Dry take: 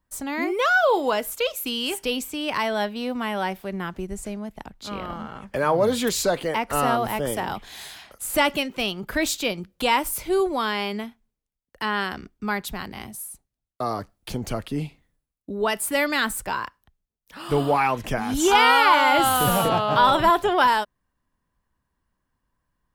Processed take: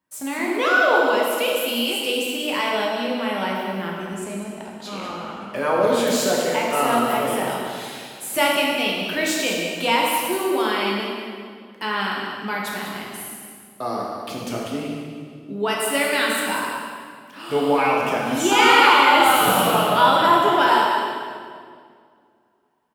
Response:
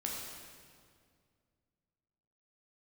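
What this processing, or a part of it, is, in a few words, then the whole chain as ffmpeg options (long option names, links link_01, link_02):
PA in a hall: -filter_complex "[0:a]highpass=190,equalizer=frequency=2700:width_type=o:width=0.57:gain=4,aecho=1:1:194:0.316[link_01];[1:a]atrim=start_sample=2205[link_02];[link_01][link_02]afir=irnorm=-1:irlink=0"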